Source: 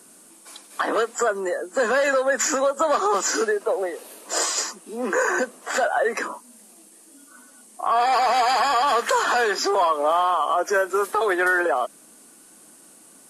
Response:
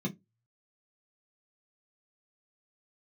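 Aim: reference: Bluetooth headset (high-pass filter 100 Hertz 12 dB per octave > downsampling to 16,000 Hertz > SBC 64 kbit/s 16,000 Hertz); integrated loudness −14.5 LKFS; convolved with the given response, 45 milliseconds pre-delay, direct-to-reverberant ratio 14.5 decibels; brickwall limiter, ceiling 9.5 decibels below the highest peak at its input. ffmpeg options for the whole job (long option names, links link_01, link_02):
-filter_complex "[0:a]alimiter=limit=-20dB:level=0:latency=1,asplit=2[link_01][link_02];[1:a]atrim=start_sample=2205,adelay=45[link_03];[link_02][link_03]afir=irnorm=-1:irlink=0,volume=-16.5dB[link_04];[link_01][link_04]amix=inputs=2:normalize=0,highpass=100,aresample=16000,aresample=44100,volume=13.5dB" -ar 16000 -c:a sbc -b:a 64k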